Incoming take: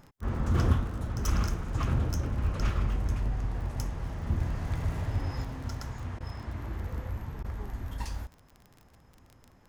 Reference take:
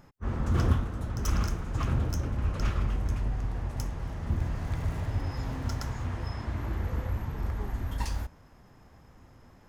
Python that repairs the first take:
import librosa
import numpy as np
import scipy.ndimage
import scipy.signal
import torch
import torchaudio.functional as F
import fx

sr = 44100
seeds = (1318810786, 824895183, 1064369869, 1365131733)

y = fx.fix_declick_ar(x, sr, threshold=6.5)
y = fx.fix_interpolate(y, sr, at_s=(6.19, 7.43), length_ms=13.0)
y = fx.gain(y, sr, db=fx.steps((0.0, 0.0), (5.44, 4.0)))